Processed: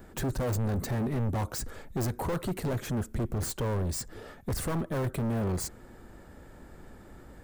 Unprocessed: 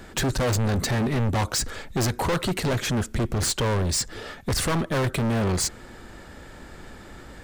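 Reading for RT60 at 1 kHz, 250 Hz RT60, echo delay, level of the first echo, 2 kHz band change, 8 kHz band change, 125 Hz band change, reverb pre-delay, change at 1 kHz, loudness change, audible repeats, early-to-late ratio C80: no reverb audible, no reverb audible, no echo audible, no echo audible, −12.0 dB, −11.0 dB, −5.5 dB, no reverb audible, −8.5 dB, −7.0 dB, no echo audible, no reverb audible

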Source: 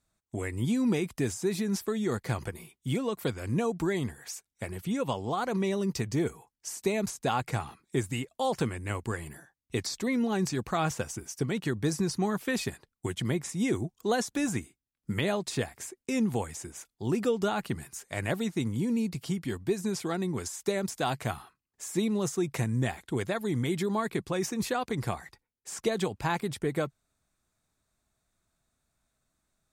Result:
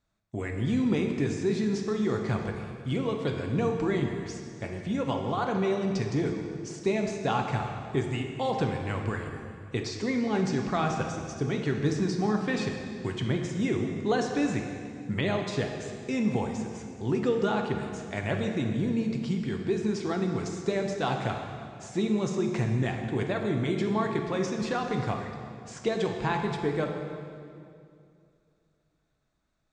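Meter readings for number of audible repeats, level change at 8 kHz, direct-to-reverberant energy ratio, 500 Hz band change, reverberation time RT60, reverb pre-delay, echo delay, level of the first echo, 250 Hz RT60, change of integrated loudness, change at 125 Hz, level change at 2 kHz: no echo audible, −7.0 dB, 2.5 dB, +2.5 dB, 2.4 s, 6 ms, no echo audible, no echo audible, 2.8 s, +1.5 dB, +2.5 dB, +1.5 dB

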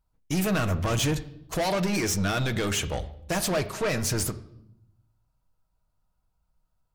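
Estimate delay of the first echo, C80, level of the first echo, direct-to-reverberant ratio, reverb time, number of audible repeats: no echo audible, 17.5 dB, no echo audible, 8.0 dB, 0.75 s, no echo audible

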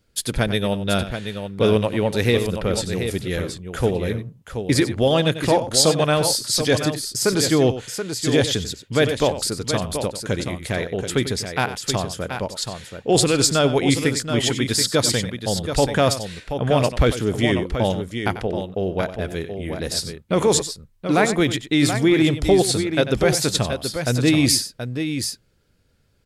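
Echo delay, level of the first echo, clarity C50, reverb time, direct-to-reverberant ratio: 94 ms, −12.5 dB, no reverb audible, no reverb audible, no reverb audible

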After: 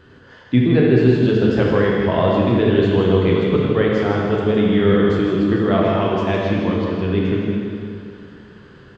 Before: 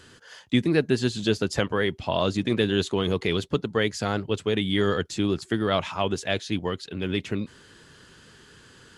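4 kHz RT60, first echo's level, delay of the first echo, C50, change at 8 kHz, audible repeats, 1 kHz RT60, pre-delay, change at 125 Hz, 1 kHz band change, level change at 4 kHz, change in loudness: 2.2 s, −6.5 dB, 160 ms, −2.0 dB, below −10 dB, 1, 2.4 s, 6 ms, +10.5 dB, +7.5 dB, −1.5 dB, +9.0 dB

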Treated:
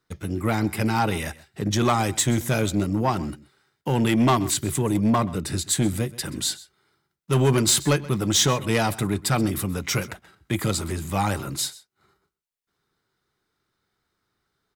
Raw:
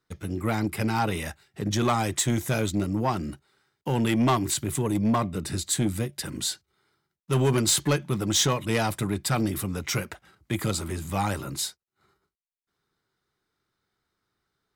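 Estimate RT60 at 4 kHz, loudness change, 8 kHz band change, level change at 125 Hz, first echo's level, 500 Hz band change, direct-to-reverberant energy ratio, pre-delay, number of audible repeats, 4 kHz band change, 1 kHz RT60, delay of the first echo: no reverb audible, +3.0 dB, +3.0 dB, +3.0 dB, −19.5 dB, +3.0 dB, no reverb audible, no reverb audible, 1, +3.0 dB, no reverb audible, 129 ms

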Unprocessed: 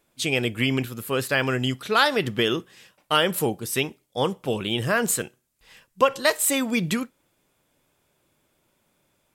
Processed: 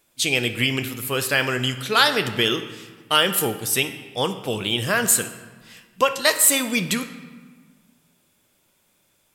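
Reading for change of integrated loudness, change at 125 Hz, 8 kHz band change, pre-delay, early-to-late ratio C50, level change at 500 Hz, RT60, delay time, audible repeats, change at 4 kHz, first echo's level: +3.5 dB, 0.0 dB, +7.5 dB, 9 ms, 11.0 dB, −0.5 dB, 1.5 s, no echo audible, no echo audible, +5.5 dB, no echo audible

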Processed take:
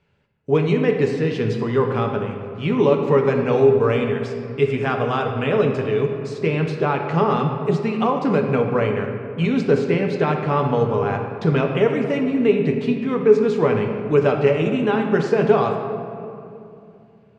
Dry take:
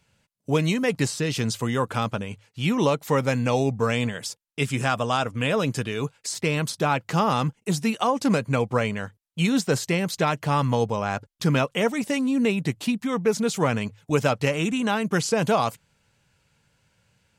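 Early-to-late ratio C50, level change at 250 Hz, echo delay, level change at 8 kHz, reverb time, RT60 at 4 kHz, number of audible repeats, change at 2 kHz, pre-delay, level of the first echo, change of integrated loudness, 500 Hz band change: 5.0 dB, +3.5 dB, no echo audible, below −15 dB, 2.7 s, 1.4 s, no echo audible, +0.5 dB, 7 ms, no echo audible, +4.5 dB, +8.5 dB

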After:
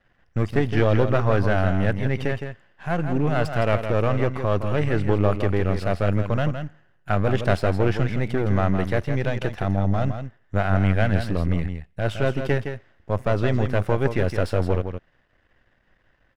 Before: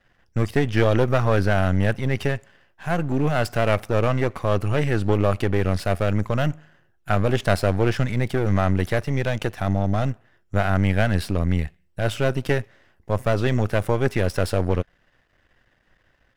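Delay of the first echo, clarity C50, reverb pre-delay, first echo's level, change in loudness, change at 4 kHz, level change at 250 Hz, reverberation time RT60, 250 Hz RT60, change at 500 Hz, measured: 164 ms, no reverb audible, no reverb audible, −8.0 dB, −0.5 dB, −3.5 dB, −0.5 dB, no reverb audible, no reverb audible, −0.5 dB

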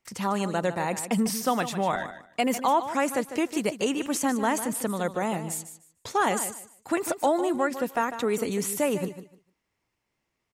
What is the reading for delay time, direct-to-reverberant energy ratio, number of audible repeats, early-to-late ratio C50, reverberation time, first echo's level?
150 ms, no reverb audible, 2, no reverb audible, no reverb audible, −11.5 dB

